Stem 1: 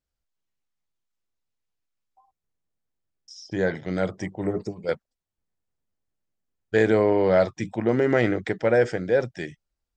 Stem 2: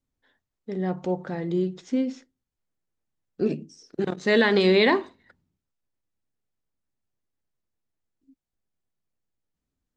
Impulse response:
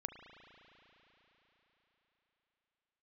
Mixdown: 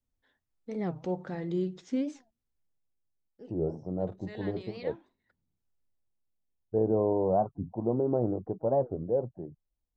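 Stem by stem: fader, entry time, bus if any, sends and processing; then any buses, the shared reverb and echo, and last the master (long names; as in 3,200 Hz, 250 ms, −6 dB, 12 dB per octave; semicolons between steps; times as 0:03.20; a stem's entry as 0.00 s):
−7.0 dB, 0.00 s, no send, Butterworth low-pass 1,000 Hz 48 dB per octave
−6.0 dB, 0.00 s, no send, automatic ducking −20 dB, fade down 0.90 s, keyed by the first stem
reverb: not used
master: low-shelf EQ 77 Hz +6.5 dB; wow of a warped record 45 rpm, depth 250 cents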